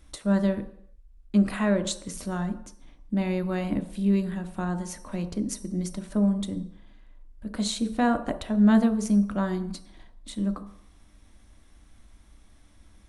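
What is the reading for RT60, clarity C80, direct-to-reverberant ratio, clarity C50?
not exponential, 15.0 dB, 7.0 dB, 12.5 dB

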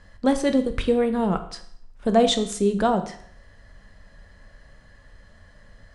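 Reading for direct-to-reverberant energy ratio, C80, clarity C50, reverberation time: 8.0 dB, 15.0 dB, 12.0 dB, 0.65 s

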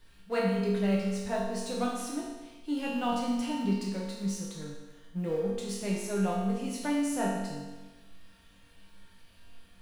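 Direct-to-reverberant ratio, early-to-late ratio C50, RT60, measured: -5.5 dB, 0.5 dB, 1.2 s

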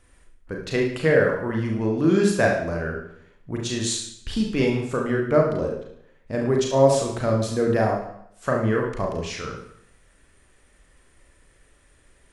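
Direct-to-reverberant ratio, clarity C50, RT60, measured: -0.5 dB, 4.0 dB, 0.70 s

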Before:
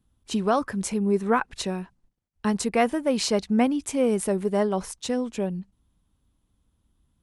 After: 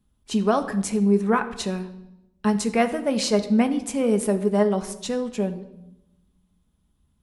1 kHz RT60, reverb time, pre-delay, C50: 0.80 s, 0.90 s, 5 ms, 12.5 dB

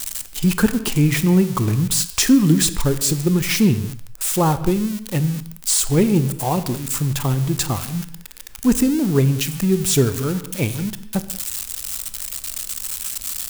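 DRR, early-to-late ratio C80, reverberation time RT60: 12.0 dB, 15.0 dB, not exponential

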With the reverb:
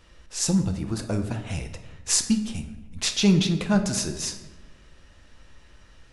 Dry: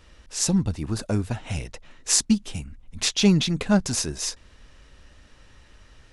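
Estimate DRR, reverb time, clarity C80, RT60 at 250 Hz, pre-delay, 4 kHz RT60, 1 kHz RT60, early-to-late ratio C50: 6.0 dB, 1.1 s, 12.0 dB, 1.4 s, 6 ms, 0.70 s, 1.0 s, 9.5 dB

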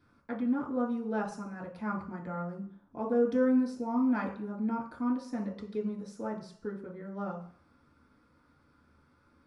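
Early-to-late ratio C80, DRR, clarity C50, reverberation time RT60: 12.0 dB, -2.5 dB, 7.5 dB, 0.50 s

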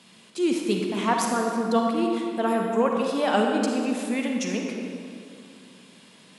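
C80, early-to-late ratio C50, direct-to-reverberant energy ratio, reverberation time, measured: 2.5 dB, 1.0 dB, 0.5 dB, 2.6 s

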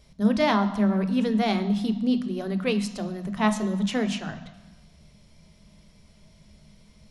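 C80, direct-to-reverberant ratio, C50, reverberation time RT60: 14.0 dB, 8.0 dB, 11.5 dB, 1.2 s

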